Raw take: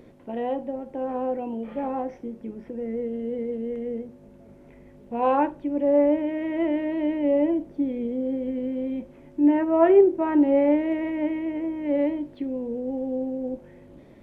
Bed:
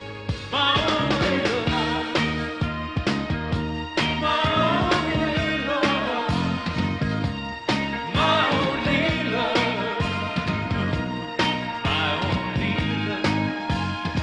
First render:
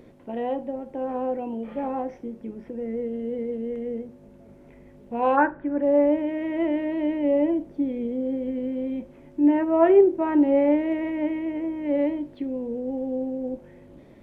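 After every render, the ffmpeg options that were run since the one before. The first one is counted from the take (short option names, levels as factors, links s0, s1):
-filter_complex "[0:a]asplit=3[s0][s1][s2];[s0]afade=t=out:st=5.36:d=0.02[s3];[s1]lowpass=f=1600:t=q:w=5.7,afade=t=in:st=5.36:d=0.02,afade=t=out:st=5.81:d=0.02[s4];[s2]afade=t=in:st=5.81:d=0.02[s5];[s3][s4][s5]amix=inputs=3:normalize=0"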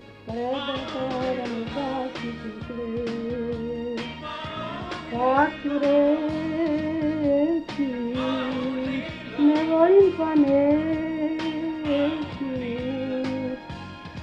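-filter_complex "[1:a]volume=0.251[s0];[0:a][s0]amix=inputs=2:normalize=0"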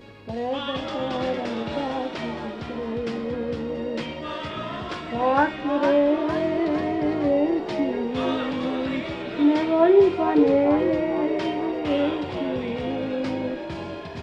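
-filter_complex "[0:a]asplit=7[s0][s1][s2][s3][s4][s5][s6];[s1]adelay=458,afreqshift=69,volume=0.376[s7];[s2]adelay=916,afreqshift=138,volume=0.202[s8];[s3]adelay=1374,afreqshift=207,volume=0.11[s9];[s4]adelay=1832,afreqshift=276,volume=0.0589[s10];[s5]adelay=2290,afreqshift=345,volume=0.032[s11];[s6]adelay=2748,afreqshift=414,volume=0.0172[s12];[s0][s7][s8][s9][s10][s11][s12]amix=inputs=7:normalize=0"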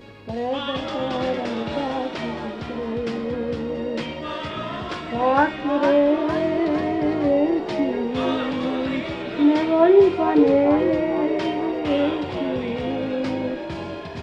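-af "volume=1.26"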